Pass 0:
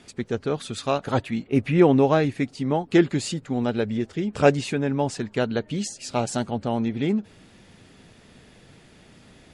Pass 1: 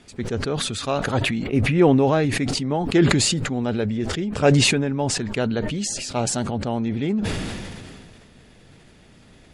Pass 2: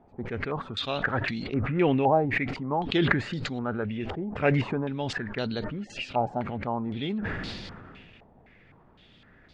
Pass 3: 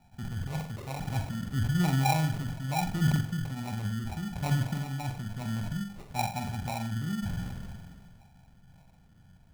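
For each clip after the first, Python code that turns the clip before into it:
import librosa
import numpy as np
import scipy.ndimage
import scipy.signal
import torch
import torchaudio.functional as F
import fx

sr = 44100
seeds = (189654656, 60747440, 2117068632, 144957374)

y1 = fx.low_shelf(x, sr, hz=70.0, db=7.5)
y1 = fx.sustainer(y1, sr, db_per_s=26.0)
y1 = y1 * librosa.db_to_amplitude(-1.0)
y2 = fx.filter_held_lowpass(y1, sr, hz=3.9, low_hz=820.0, high_hz=4400.0)
y2 = y2 * librosa.db_to_amplitude(-8.0)
y3 = fx.curve_eq(y2, sr, hz=(180.0, 460.0, 840.0, 1600.0, 3600.0), db=(0, -28, -3, -26, -16))
y3 = fx.room_flutter(y3, sr, wall_m=7.7, rt60_s=0.45)
y3 = fx.sample_hold(y3, sr, seeds[0], rate_hz=1600.0, jitter_pct=0)
y3 = y3 * librosa.db_to_amplitude(2.0)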